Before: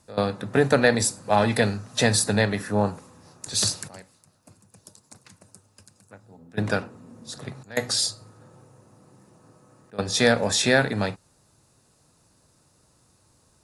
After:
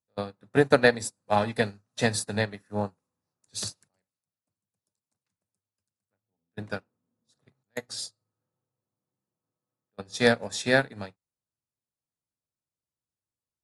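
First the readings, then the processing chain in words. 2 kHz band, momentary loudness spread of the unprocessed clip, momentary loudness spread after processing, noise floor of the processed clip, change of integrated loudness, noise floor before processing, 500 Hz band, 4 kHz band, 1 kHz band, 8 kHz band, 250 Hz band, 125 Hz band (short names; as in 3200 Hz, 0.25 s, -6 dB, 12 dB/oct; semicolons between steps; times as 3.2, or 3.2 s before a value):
-3.0 dB, 16 LU, 18 LU, under -85 dBFS, -4.0 dB, -63 dBFS, -3.0 dB, -8.0 dB, -4.0 dB, -10.5 dB, -5.5 dB, -7.0 dB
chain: upward expander 2.5:1, over -39 dBFS; gain +1.5 dB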